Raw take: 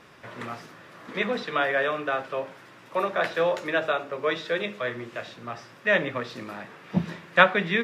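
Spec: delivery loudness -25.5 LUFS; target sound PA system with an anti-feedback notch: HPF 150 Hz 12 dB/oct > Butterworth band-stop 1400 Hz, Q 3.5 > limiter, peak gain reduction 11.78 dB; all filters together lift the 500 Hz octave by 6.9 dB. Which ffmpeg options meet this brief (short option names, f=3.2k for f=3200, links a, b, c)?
-af "highpass=150,asuperstop=centerf=1400:order=8:qfactor=3.5,equalizer=f=500:t=o:g=8,volume=2.5dB,alimiter=limit=-14dB:level=0:latency=1"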